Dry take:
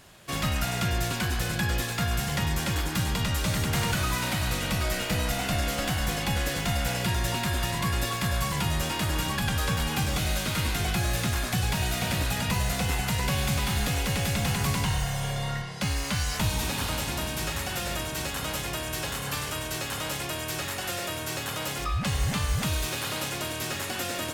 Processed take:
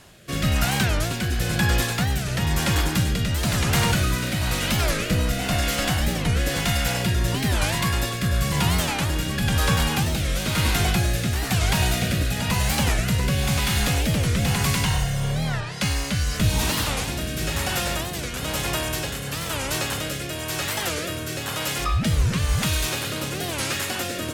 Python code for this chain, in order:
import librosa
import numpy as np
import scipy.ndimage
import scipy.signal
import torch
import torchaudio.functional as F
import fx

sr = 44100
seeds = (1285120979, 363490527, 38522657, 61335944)

y = fx.rotary(x, sr, hz=1.0)
y = fx.record_warp(y, sr, rpm=45.0, depth_cents=250.0)
y = y * 10.0 ** (7.0 / 20.0)